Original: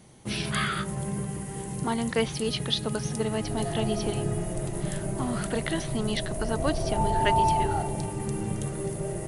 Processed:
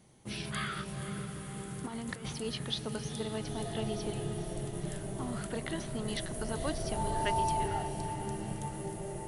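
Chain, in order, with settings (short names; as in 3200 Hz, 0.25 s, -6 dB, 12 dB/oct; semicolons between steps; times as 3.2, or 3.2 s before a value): 1.82–2.33 negative-ratio compressor -30 dBFS, ratio -0.5; 6.08–7.68 high shelf 6600 Hz +7.5 dB; on a send: diffused feedback echo 0.479 s, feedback 60%, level -10 dB; on the sum: gain -8.5 dB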